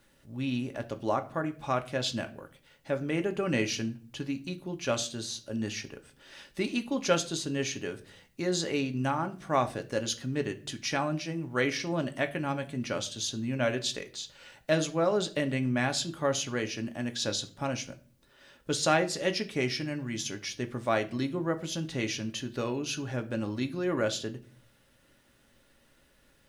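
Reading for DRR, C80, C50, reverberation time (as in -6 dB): 6.0 dB, 21.5 dB, 17.0 dB, 0.40 s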